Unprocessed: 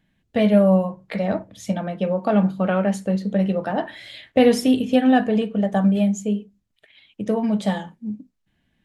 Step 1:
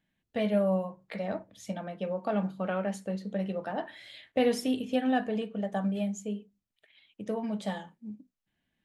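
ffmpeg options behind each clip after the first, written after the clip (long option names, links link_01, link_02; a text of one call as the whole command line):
ffmpeg -i in.wav -af "lowshelf=frequency=210:gain=-7,volume=-9dB" out.wav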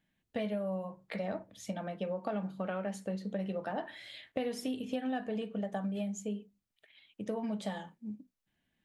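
ffmpeg -i in.wav -af "acompressor=threshold=-32dB:ratio=6" out.wav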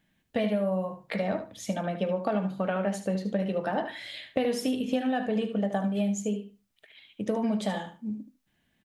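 ffmpeg -i in.wav -af "aecho=1:1:75|150:0.316|0.0538,volume=7.5dB" out.wav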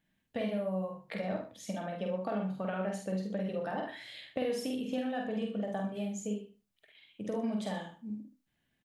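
ffmpeg -i in.wav -filter_complex "[0:a]asplit=2[link_01][link_02];[link_02]adelay=48,volume=-3.5dB[link_03];[link_01][link_03]amix=inputs=2:normalize=0,volume=-8dB" out.wav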